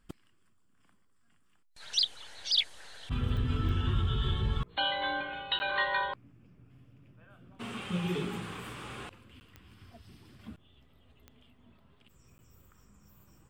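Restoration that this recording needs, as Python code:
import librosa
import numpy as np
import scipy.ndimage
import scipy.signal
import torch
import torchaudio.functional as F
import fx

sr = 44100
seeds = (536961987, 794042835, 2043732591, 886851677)

y = fx.fix_declick_ar(x, sr, threshold=10.0)
y = fx.fix_interpolate(y, sr, at_s=(5.59, 9.4, 12.38), length_ms=10.0)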